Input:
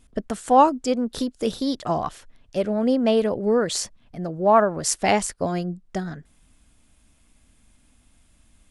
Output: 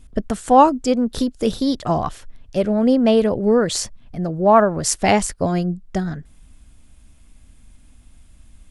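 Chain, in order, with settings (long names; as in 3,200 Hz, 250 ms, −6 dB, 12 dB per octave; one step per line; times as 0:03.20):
low-shelf EQ 140 Hz +10 dB
level +3 dB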